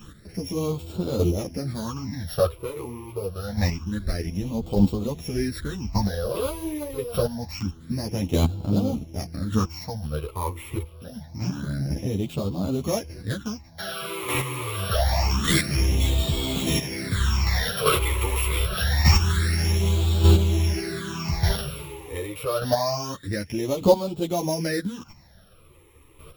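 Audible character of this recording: a buzz of ramps at a fixed pitch in blocks of 8 samples; phasing stages 8, 0.26 Hz, lowest notch 200–1800 Hz; chopped level 0.84 Hz, depth 60%, duty 10%; a shimmering, thickened sound

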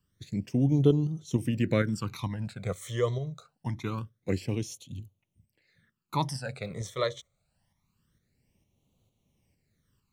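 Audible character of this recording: tremolo saw up 2.2 Hz, depth 45%; phasing stages 12, 0.25 Hz, lowest notch 260–1700 Hz

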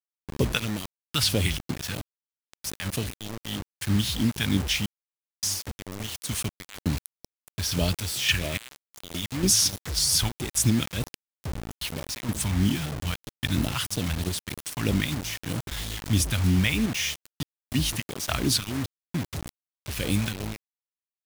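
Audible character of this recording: random-step tremolo, depth 100%; phasing stages 2, 3.1 Hz, lowest notch 340–1500 Hz; a quantiser's noise floor 6-bit, dither none

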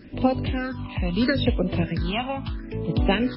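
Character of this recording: phasing stages 6, 0.76 Hz, lowest notch 410–1700 Hz; a quantiser's noise floor 10-bit, dither none; random-step tremolo 3.8 Hz, depth 55%; MP3

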